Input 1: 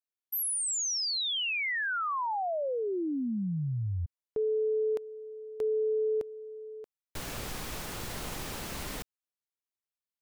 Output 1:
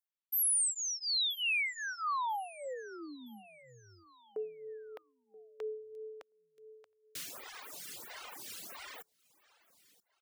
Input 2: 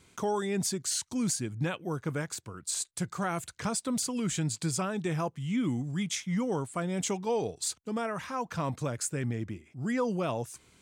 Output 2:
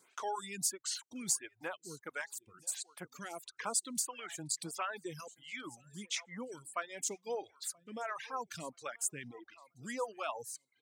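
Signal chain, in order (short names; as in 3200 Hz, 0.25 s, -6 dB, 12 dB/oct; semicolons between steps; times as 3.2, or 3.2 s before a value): HPF 1200 Hz 6 dB/oct; reverb removal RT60 1.2 s; on a send: feedback echo 0.979 s, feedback 38%, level -21 dB; on the sum: reverb removal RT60 0.77 s; photocell phaser 1.5 Hz; gain +2.5 dB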